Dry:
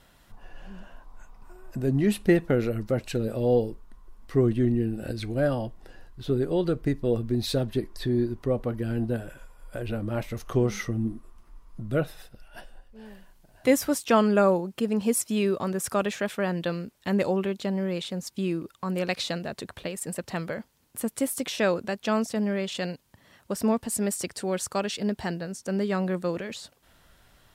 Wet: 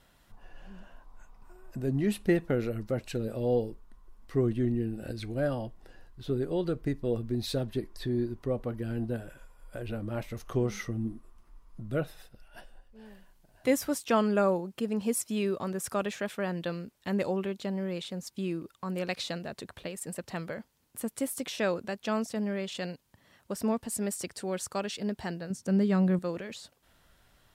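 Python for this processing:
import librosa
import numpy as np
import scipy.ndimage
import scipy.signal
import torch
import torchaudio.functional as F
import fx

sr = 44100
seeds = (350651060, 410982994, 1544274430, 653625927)

y = fx.peak_eq(x, sr, hz=140.0, db=11.0, octaves=1.8, at=(25.5, 26.19))
y = y * librosa.db_to_amplitude(-5.0)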